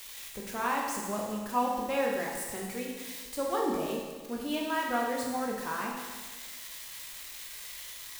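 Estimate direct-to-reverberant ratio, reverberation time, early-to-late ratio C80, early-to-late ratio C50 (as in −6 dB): −2.0 dB, 1.5 s, 3.5 dB, 1.5 dB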